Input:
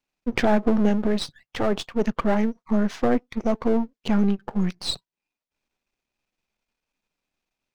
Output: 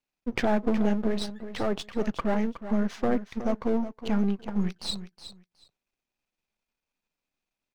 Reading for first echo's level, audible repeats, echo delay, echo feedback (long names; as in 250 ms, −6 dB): −12.0 dB, 2, 367 ms, 18%